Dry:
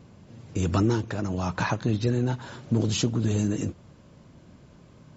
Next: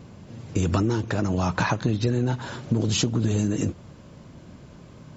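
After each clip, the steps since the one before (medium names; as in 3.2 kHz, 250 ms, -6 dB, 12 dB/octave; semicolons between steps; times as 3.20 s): compression, threshold -25 dBFS, peak gain reduction 7 dB; trim +6 dB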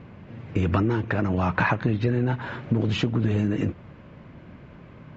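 resonant low-pass 2.2 kHz, resonance Q 1.7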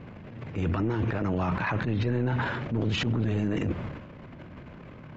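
transient shaper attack -11 dB, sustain +11 dB; peak limiter -19.5 dBFS, peak gain reduction 10.5 dB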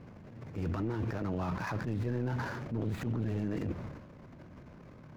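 median filter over 15 samples; trim -6.5 dB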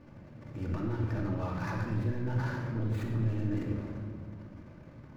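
simulated room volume 2200 m³, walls mixed, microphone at 2.5 m; trim -4.5 dB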